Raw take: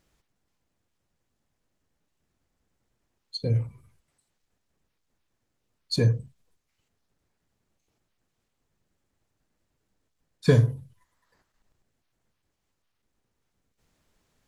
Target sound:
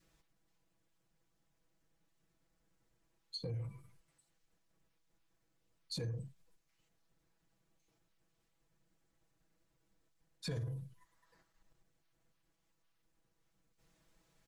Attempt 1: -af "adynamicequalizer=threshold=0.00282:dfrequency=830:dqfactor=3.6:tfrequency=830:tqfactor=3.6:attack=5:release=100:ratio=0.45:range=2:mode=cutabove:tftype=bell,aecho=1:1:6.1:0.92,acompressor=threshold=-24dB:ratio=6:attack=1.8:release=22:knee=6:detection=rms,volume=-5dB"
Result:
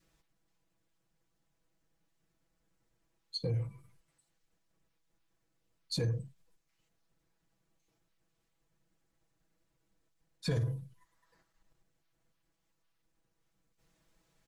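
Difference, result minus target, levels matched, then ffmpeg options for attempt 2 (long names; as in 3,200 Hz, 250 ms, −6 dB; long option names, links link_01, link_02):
downward compressor: peak gain reduction −8 dB
-af "adynamicequalizer=threshold=0.00282:dfrequency=830:dqfactor=3.6:tfrequency=830:tqfactor=3.6:attack=5:release=100:ratio=0.45:range=2:mode=cutabove:tftype=bell,aecho=1:1:6.1:0.92,acompressor=threshold=-33.5dB:ratio=6:attack=1.8:release=22:knee=6:detection=rms,volume=-5dB"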